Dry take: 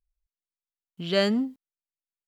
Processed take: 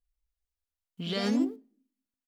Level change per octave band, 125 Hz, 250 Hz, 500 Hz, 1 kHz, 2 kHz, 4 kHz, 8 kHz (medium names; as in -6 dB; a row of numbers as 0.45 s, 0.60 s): -3.0 dB, -1.5 dB, -9.0 dB, -3.5 dB, -7.5 dB, -5.5 dB, -1.0 dB